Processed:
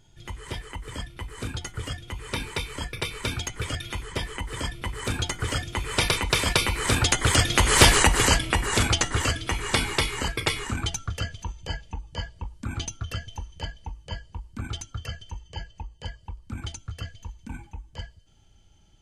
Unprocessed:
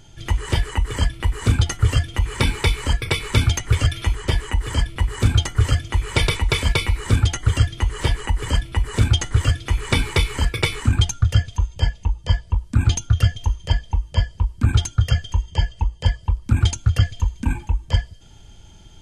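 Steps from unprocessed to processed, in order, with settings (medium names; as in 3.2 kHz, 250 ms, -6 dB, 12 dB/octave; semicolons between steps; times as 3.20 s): Doppler pass-by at 7.88 s, 10 m/s, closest 1.6 m; spectrum-flattening compressor 2:1; trim +6.5 dB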